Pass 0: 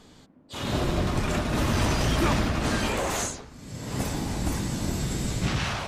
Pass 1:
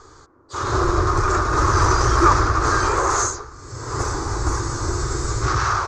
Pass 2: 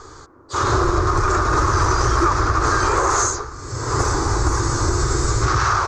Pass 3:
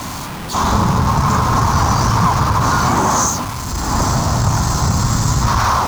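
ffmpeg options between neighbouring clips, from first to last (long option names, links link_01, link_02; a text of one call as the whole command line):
ffmpeg -i in.wav -af "firequalizer=gain_entry='entry(110,0);entry(190,-25);entry(360,4);entry(620,-8);entry(1200,11);entry(1900,-5);entry(2900,-17);entry(4500,-3);entry(6600,3);entry(11000,-26)':delay=0.05:min_phase=1,volume=7.5dB" out.wav
ffmpeg -i in.wav -af "acompressor=threshold=-20dB:ratio=6,volume=6dB" out.wav
ffmpeg -i in.wav -af "aeval=exprs='val(0)+0.5*0.0708*sgn(val(0))':channel_layout=same,afreqshift=-170,volume=1.5dB" out.wav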